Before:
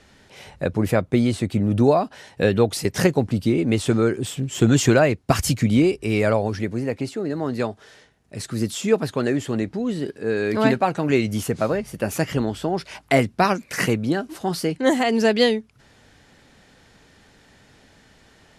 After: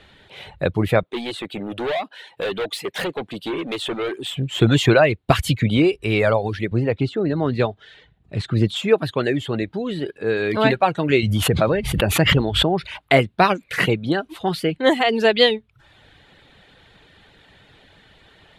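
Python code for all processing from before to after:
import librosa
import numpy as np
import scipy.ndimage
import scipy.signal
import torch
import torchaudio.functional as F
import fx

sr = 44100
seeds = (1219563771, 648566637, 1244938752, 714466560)

y = fx.chain(x, sr, fx.highpass(hz=320.0, slope=12),
    fx.overload_stage(gain_db=24.0), at=(1.03, 4.33))
y = fx.chain(y, sr, fx.lowpass(hz=6600.0, slope=12),
    fx.low_shelf(hz=290.0, db=8.5), at=(6.71, 8.76))
y = fx.chain(y, sr, fx.low_shelf(hz=180.0, db=7.0),
    fx.pre_swell(db_per_s=41.0), at=(11.23, 12.99))
y = fx.high_shelf_res(y, sr, hz=4500.0, db=-7.0, q=3.0)
y = fx.dereverb_blind(y, sr, rt60_s=0.57)
y = fx.peak_eq(y, sr, hz=240.0, db=-6.5, octaves=0.41)
y = F.gain(torch.from_numpy(y), 3.0).numpy()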